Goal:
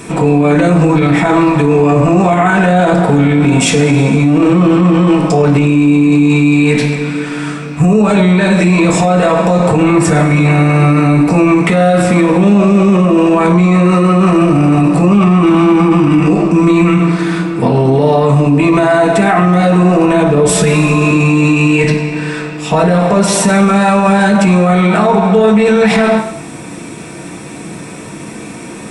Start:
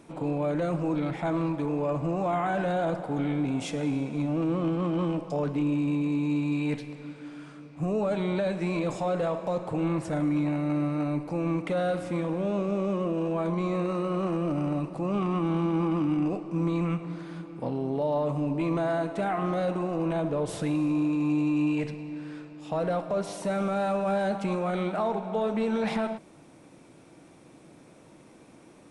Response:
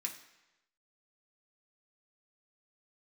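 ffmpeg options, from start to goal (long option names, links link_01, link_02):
-filter_complex "[0:a]asettb=1/sr,asplit=3[link_01][link_02][link_03];[link_01]atrim=end=20.494[link_04];[link_02]atrim=start=20.49:end=21.11,asetpts=PTS-STARTPTS,afade=type=in:duration=0.004:curve=qsin,afade=type=out:start_time=0.616:duration=0.004:curve=qsin,aecho=1:1:4.8:0.67,atrim=end_sample=27342[link_05];[link_03]atrim=start=21.106[link_06];[link_04][link_05]acrossfade=duration=0.004:curve1=hsin:curve2=qsin[link_07];[link_07][link_06]acrossfade=duration=0.004:curve1=qsin:curve2=hsin[link_08];[1:a]atrim=start_sample=2205,afade=type=out:start_time=0.32:duration=0.01,atrim=end_sample=14553[link_09];[link_08][link_09]afir=irnorm=-1:irlink=0,alimiter=level_in=29.5dB:limit=-1dB:release=50:level=0:latency=1,volume=-1dB"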